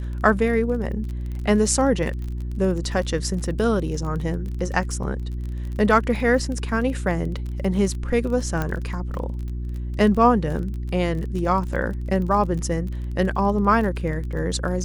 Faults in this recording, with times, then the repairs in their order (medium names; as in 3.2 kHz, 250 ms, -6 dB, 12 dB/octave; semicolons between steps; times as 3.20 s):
crackle 30 per s -30 dBFS
hum 60 Hz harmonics 6 -28 dBFS
8.62 s: pop -12 dBFS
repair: de-click; de-hum 60 Hz, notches 6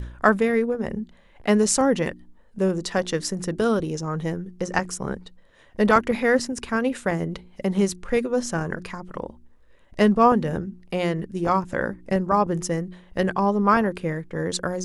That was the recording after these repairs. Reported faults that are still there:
nothing left